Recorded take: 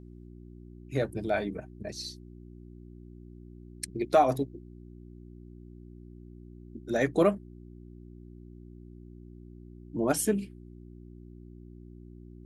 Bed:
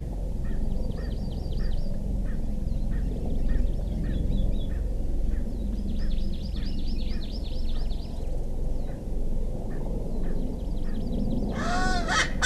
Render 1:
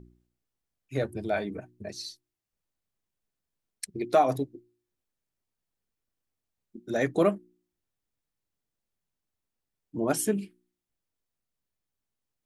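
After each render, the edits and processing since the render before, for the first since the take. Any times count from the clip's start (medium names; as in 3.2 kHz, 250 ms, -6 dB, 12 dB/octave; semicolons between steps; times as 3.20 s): de-hum 60 Hz, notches 6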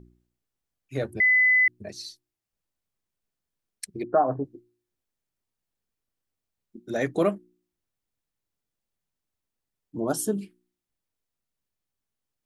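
1.20–1.68 s: bleep 2.01 kHz -16 dBFS; 4.03–4.45 s: steep low-pass 1.7 kHz 96 dB/octave; 9.97–10.41 s: Butterworth band-stop 2.2 kHz, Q 1.2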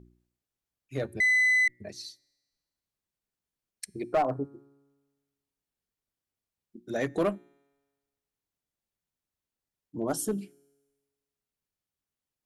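feedback comb 140 Hz, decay 1.4 s, mix 30%; one-sided clip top -21.5 dBFS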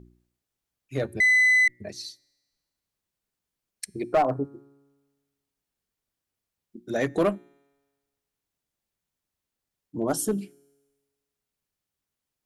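trim +4 dB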